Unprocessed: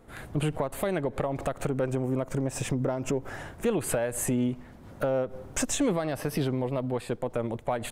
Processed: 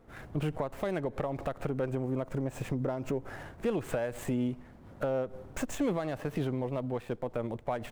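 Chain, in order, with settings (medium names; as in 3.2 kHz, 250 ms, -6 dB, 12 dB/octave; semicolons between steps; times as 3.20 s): median filter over 9 samples; trim -4 dB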